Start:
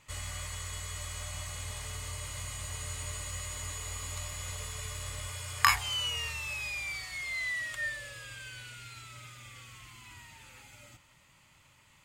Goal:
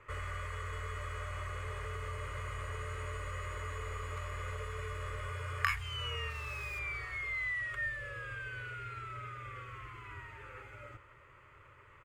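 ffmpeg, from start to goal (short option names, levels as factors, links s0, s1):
-filter_complex "[0:a]firequalizer=gain_entry='entry(110,0);entry(190,-17);entry(410,10);entry(780,-9);entry(1200,6);entry(3900,-22);entry(6500,-24)':delay=0.05:min_phase=1,acrossover=split=190|2500[s0][s1][s2];[s0]alimiter=level_in=9.44:limit=0.0631:level=0:latency=1,volume=0.106[s3];[s1]acompressor=threshold=0.00355:ratio=4[s4];[s3][s4][s2]amix=inputs=3:normalize=0,asettb=1/sr,asplit=3[s5][s6][s7];[s5]atrim=end=6.304[s8];[s6]atrim=start=6.3:end=6.79,asetpts=PTS-STARTPTS,afade=t=in:d=0.004:c=qsin,afade=t=out:st=0.486:d=0.004:c=qsin,aeval=exprs='sgn(val(0))*max(abs(val(0))-0.00141,0)':c=same[s9];[s7]atrim=start=6.786[s10];[s8][s9]acrossfade=d=0.004:c1=hsin:c2=qsin[s11];[s11][s10]acrossfade=d=0.004:c1=qsin:c2=hsin,volume=2"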